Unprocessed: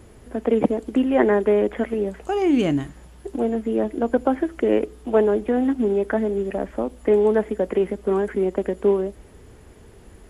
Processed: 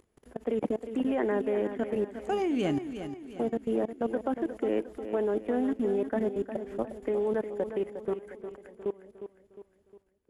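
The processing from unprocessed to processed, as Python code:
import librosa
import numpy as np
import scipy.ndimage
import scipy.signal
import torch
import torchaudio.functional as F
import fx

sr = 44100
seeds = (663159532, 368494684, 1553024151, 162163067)

y = fx.fade_out_tail(x, sr, length_s=3.41)
y = fx.low_shelf(y, sr, hz=120.0, db=-5.5)
y = fx.level_steps(y, sr, step_db=24)
y = fx.echo_feedback(y, sr, ms=357, feedback_pct=47, wet_db=-10.0)
y = F.gain(torch.from_numpy(y), -3.5).numpy()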